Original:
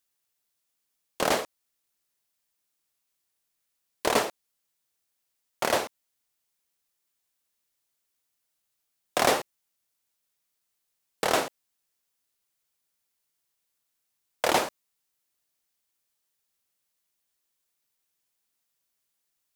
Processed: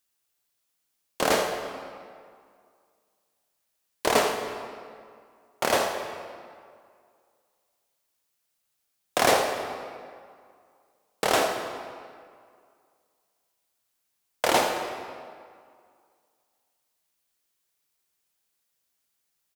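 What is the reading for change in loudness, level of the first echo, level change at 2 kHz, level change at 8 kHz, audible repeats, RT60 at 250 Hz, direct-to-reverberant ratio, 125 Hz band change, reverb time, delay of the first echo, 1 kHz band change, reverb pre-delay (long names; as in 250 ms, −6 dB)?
+1.0 dB, −11.0 dB, +3.0 dB, +2.0 dB, 1, 2.1 s, 2.5 dB, +2.5 dB, 2.1 s, 82 ms, +3.0 dB, 20 ms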